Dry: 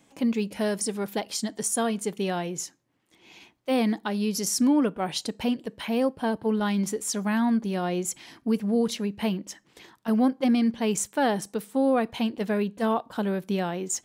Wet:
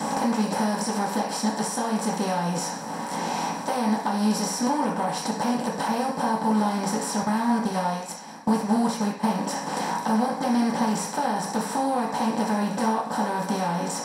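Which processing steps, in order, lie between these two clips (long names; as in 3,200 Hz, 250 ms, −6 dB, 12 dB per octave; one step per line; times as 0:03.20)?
compressor on every frequency bin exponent 0.4
high-pass filter 120 Hz 12 dB per octave
notch filter 2,300 Hz, Q 20
0:07.22–0:09.24: noise gate −21 dBFS, range −19 dB
octave-band graphic EQ 250/500/1,000/2,000 Hz −11/−5/+6/+6 dB
downward compressor 6 to 1, threshold −29 dBFS, peak gain reduction 13.5 dB
convolution reverb RT60 0.45 s, pre-delay 3 ms, DRR −6.5 dB
level −8.5 dB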